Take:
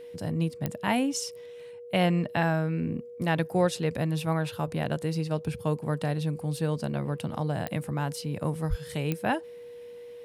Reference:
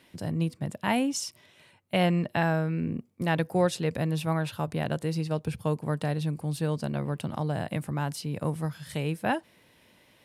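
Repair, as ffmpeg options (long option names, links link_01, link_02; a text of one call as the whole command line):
ffmpeg -i in.wav -filter_complex "[0:a]adeclick=threshold=4,bandreject=frequency=480:width=30,asplit=3[link_01][link_02][link_03];[link_01]afade=type=out:start_time=8.69:duration=0.02[link_04];[link_02]highpass=frequency=140:width=0.5412,highpass=frequency=140:width=1.3066,afade=type=in:start_time=8.69:duration=0.02,afade=type=out:start_time=8.81:duration=0.02[link_05];[link_03]afade=type=in:start_time=8.81:duration=0.02[link_06];[link_04][link_05][link_06]amix=inputs=3:normalize=0" out.wav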